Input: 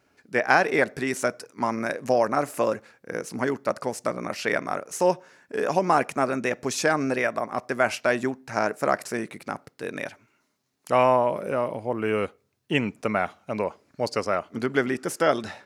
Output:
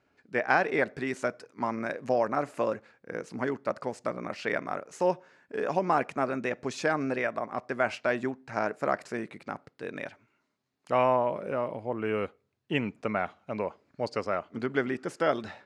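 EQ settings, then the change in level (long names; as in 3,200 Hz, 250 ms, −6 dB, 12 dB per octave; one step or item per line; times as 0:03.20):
high-frequency loss of the air 90 metres
parametric band 5,700 Hz −4 dB 0.27 octaves
−4.5 dB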